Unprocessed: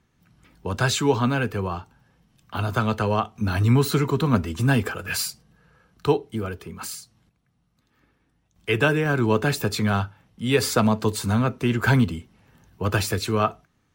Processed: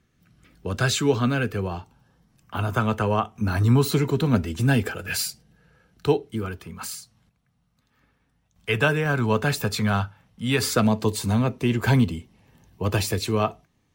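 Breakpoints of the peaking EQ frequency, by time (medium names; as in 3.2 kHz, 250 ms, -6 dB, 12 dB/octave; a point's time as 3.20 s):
peaking EQ -10 dB 0.36 oct
1.55 s 910 Hz
2.55 s 4.3 kHz
3.39 s 4.3 kHz
4.06 s 1.1 kHz
6.16 s 1.1 kHz
6.73 s 340 Hz
10.43 s 340 Hz
10.96 s 1.4 kHz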